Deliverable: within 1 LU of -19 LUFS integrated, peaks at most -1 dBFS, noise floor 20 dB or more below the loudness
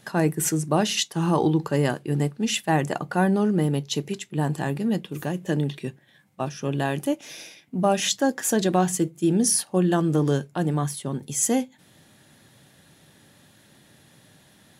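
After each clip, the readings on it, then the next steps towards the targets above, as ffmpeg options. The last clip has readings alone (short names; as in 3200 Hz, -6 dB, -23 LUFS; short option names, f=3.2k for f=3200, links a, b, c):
loudness -24.0 LUFS; peak -8.5 dBFS; loudness target -19.0 LUFS
-> -af "volume=5dB"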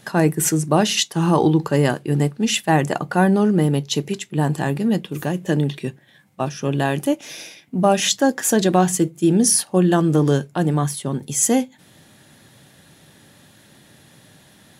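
loudness -19.0 LUFS; peak -3.5 dBFS; noise floor -51 dBFS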